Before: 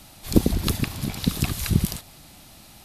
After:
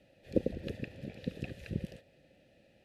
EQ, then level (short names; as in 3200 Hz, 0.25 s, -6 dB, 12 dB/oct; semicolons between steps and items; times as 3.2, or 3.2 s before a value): vowel filter e; low shelf 200 Hz +9.5 dB; low shelf 470 Hz +11 dB; -5.0 dB